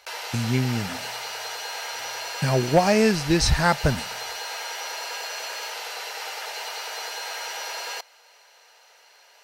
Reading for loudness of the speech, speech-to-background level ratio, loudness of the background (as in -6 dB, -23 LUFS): -22.5 LUFS, 9.0 dB, -31.5 LUFS